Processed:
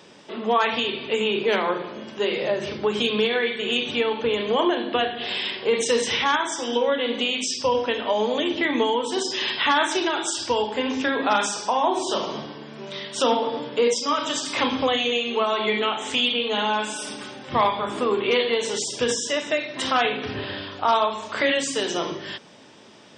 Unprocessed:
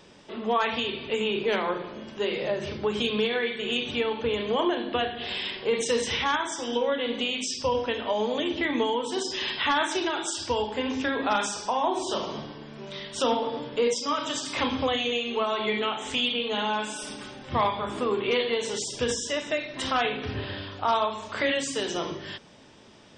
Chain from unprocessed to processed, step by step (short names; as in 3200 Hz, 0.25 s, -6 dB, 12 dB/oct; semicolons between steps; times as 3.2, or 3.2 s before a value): Bessel high-pass 170 Hz, order 2; gain +4.5 dB